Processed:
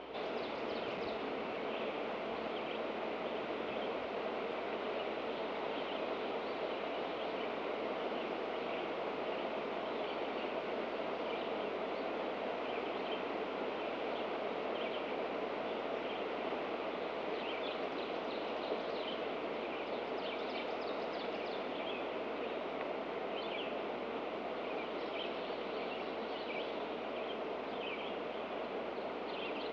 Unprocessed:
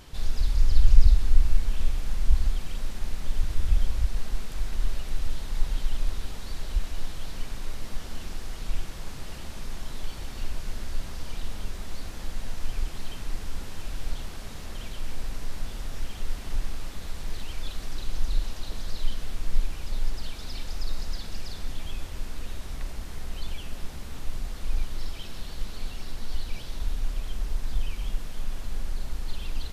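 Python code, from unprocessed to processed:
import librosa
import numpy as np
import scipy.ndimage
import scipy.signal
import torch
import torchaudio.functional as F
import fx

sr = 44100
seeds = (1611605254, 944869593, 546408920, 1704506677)

y = fx.cabinet(x, sr, low_hz=270.0, low_slope=24, high_hz=2700.0, hz=(450.0, 650.0, 1700.0), db=(7, 7, -9))
y = fx.add_hum(y, sr, base_hz=60, snr_db=30)
y = y * librosa.db_to_amplitude(6.5)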